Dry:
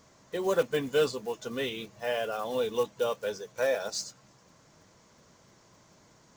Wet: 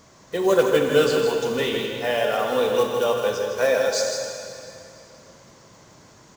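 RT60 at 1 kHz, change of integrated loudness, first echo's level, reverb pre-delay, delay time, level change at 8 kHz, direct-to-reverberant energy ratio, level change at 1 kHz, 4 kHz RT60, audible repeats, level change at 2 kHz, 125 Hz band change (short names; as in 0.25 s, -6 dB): 2.8 s, +9.0 dB, -7.0 dB, 7 ms, 0.159 s, +9.5 dB, 1.0 dB, +10.0 dB, 2.6 s, 1, +9.5 dB, +9.5 dB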